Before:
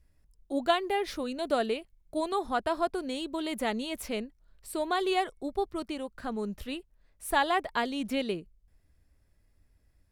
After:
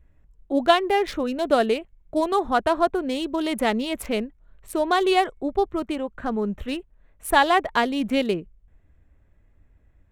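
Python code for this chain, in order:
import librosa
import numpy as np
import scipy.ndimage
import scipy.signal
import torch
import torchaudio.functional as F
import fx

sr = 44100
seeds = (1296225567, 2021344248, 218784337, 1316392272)

y = fx.wiener(x, sr, points=9)
y = y * 10.0 ** (8.5 / 20.0)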